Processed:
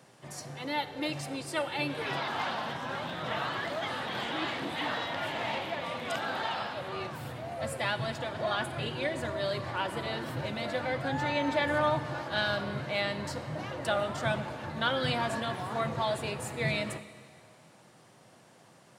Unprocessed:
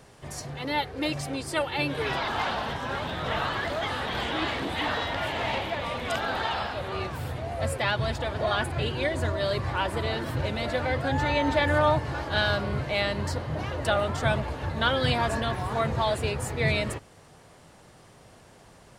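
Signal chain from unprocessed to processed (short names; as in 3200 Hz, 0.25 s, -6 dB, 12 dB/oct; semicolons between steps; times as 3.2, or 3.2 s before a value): HPF 120 Hz 24 dB/oct; notch 430 Hz, Q 12; on a send: reverb RT60 2.0 s, pre-delay 6 ms, DRR 12 dB; on the sum: gain -4.5 dB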